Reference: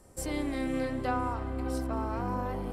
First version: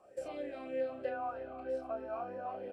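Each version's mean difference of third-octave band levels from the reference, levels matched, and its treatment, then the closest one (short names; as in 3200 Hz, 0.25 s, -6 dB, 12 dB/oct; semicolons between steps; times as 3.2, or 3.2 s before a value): 9.0 dB: compressor 2.5:1, threshold -38 dBFS, peak gain reduction 8.5 dB; doubler 31 ms -5 dB; vowel sweep a-e 3.2 Hz; gain +9.5 dB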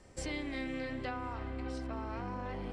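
3.5 dB: air absorption 130 m; compressor, threshold -35 dBFS, peak gain reduction 9 dB; band shelf 4300 Hz +9 dB 2.9 oct; gain -1 dB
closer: second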